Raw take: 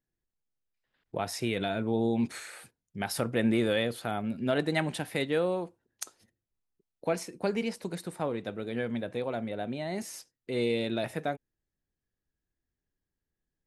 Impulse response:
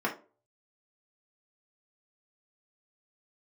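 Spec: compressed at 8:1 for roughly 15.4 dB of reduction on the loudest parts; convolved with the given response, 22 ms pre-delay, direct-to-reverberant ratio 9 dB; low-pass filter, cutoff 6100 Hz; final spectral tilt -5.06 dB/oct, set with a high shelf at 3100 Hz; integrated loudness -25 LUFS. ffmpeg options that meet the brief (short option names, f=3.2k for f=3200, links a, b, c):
-filter_complex "[0:a]lowpass=6.1k,highshelf=f=3.1k:g=-3,acompressor=threshold=-39dB:ratio=8,asplit=2[a][b];[1:a]atrim=start_sample=2205,adelay=22[c];[b][c]afir=irnorm=-1:irlink=0,volume=-18dB[d];[a][d]amix=inputs=2:normalize=0,volume=18.5dB"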